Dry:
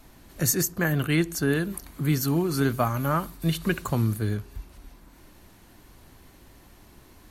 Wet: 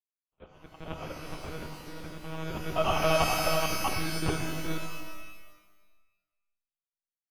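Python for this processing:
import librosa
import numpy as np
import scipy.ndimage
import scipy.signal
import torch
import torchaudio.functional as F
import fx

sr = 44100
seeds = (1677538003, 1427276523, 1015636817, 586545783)

p1 = fx.local_reverse(x, sr, ms=66.0)
p2 = fx.env_lowpass_down(p1, sr, base_hz=630.0, full_db=-20.0)
p3 = fx.noise_reduce_blind(p2, sr, reduce_db=15)
p4 = fx.auto_swell(p3, sr, attack_ms=147.0)
p5 = fx.over_compress(p4, sr, threshold_db=-29.0, ratio=-0.5)
p6 = p4 + (p5 * 10.0 ** (-1.5 / 20.0))
p7 = np.sign(p6) * np.maximum(np.abs(p6) - 10.0 ** (-46.0 / 20.0), 0.0)
p8 = fx.filter_sweep_highpass(p7, sr, from_hz=1100.0, to_hz=210.0, start_s=1.47, end_s=5.22, q=1.1)
p9 = fx.sample_hold(p8, sr, seeds[0], rate_hz=1900.0, jitter_pct=0)
p10 = p9 + 10.0 ** (-4.0 / 20.0) * np.pad(p9, (int(424 * sr / 1000.0), 0))[:len(p9)]
p11 = fx.lpc_monotone(p10, sr, seeds[1], pitch_hz=160.0, order=10)
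y = fx.rev_shimmer(p11, sr, seeds[2], rt60_s=1.1, semitones=12, shimmer_db=-2, drr_db=6.0)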